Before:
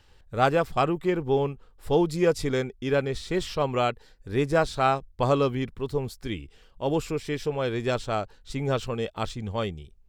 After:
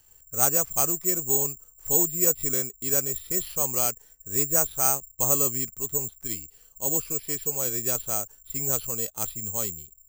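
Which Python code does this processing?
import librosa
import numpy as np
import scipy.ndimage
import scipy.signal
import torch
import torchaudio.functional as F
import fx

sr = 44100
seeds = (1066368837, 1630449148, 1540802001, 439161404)

y = (np.kron(scipy.signal.resample_poly(x, 1, 6), np.eye(6)[0]) * 6)[:len(x)]
y = F.gain(torch.from_numpy(y), -8.0).numpy()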